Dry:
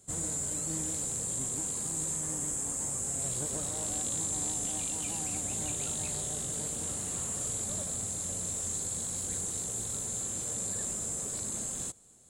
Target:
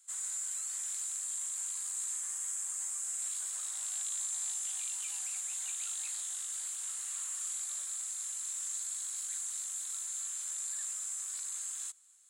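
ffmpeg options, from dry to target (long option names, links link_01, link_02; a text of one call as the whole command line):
ffmpeg -i in.wav -af "highpass=frequency=1200:width=0.5412,highpass=frequency=1200:width=1.3066,volume=-3dB" out.wav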